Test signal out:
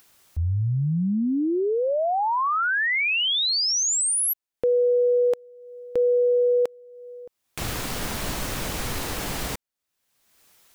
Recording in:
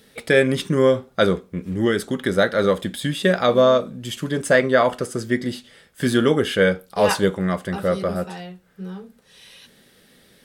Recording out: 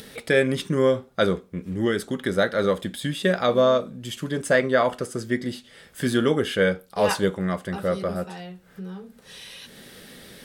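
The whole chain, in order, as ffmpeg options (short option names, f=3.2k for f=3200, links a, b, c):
-af "acompressor=mode=upward:threshold=-29dB:ratio=2.5,volume=-3.5dB"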